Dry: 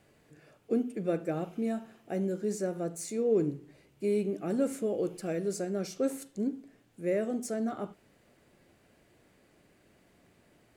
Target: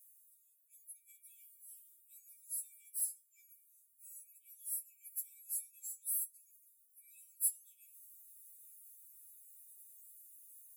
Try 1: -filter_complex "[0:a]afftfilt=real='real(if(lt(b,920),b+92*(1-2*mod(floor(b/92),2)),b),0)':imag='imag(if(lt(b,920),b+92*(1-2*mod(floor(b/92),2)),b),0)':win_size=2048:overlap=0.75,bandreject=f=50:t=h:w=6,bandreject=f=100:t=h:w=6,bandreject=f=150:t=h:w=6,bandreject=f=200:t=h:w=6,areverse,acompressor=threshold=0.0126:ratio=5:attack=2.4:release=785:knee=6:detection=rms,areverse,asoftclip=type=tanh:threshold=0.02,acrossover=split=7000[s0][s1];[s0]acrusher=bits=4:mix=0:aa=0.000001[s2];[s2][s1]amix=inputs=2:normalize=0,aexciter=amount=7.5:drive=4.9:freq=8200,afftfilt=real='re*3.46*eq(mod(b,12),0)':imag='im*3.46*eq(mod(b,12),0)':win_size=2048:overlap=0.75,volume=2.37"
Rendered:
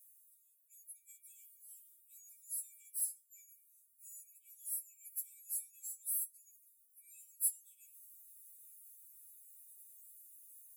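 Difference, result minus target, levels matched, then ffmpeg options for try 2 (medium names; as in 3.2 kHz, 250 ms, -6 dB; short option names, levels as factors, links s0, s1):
saturation: distortion +12 dB
-filter_complex "[0:a]afftfilt=real='real(if(lt(b,920),b+92*(1-2*mod(floor(b/92),2)),b),0)':imag='imag(if(lt(b,920),b+92*(1-2*mod(floor(b/92),2)),b),0)':win_size=2048:overlap=0.75,bandreject=f=50:t=h:w=6,bandreject=f=100:t=h:w=6,bandreject=f=150:t=h:w=6,bandreject=f=200:t=h:w=6,areverse,acompressor=threshold=0.0126:ratio=5:attack=2.4:release=785:knee=6:detection=rms,areverse,asoftclip=type=tanh:threshold=0.0447,acrossover=split=7000[s0][s1];[s0]acrusher=bits=4:mix=0:aa=0.000001[s2];[s2][s1]amix=inputs=2:normalize=0,aexciter=amount=7.5:drive=4.9:freq=8200,afftfilt=real='re*3.46*eq(mod(b,12),0)':imag='im*3.46*eq(mod(b,12),0)':win_size=2048:overlap=0.75,volume=2.37"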